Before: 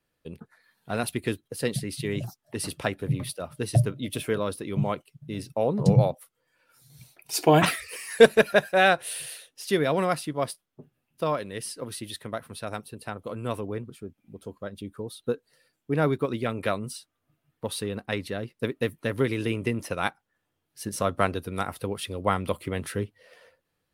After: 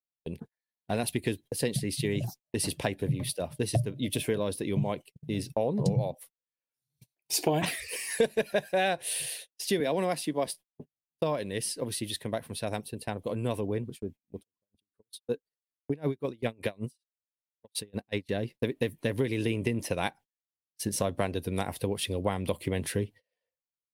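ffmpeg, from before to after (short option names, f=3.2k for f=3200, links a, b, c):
-filter_complex "[0:a]asettb=1/sr,asplit=3[a][b][c];[a]atrim=end=9.804[d];[b]atrim=start=9.8:end=10.47,asetpts=PTS-STARTPTS,afade=t=in:d=0.004:c=qsin,afade=t=out:st=0.666:d=0.004:c=qsin,highpass=f=170:w=0.5412,highpass=f=170:w=1.3066[e];[c]atrim=start=10.466[f];[d][e]acrossfade=d=0.004:c1=hsin:c2=qsin[g];[g][f]acrossfade=d=0.004:c1=qsin:c2=hsin,asettb=1/sr,asplit=3[h][i][j];[h]atrim=end=14.394[k];[i]atrim=start=14.39:end=18.29,asetpts=PTS-STARTPTS,afade=t=in:d=0.004:c=qsin,afade=t=out:st=3.896:d=0.004:c=qsin,aeval=exprs='val(0)*pow(10,-31*(0.5-0.5*cos(2*PI*5.3*n/s))/20)':c=same[l];[j]atrim=start=18.286[m];[k][l]acrossfade=d=0.004:c1=hsin:c2=qsin[n];[n][m]acrossfade=d=0.004:c1=qsin:c2=hsin,agate=range=-35dB:threshold=-45dB:ratio=16:detection=peak,equalizer=f=1.3k:t=o:w=0.39:g=-15,acompressor=threshold=-28dB:ratio=4,volume=3dB"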